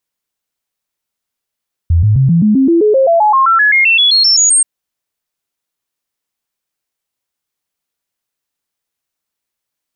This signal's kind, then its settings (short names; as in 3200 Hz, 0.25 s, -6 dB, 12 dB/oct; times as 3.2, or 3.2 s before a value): stepped sine 84.1 Hz up, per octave 3, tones 21, 0.13 s, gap 0.00 s -6 dBFS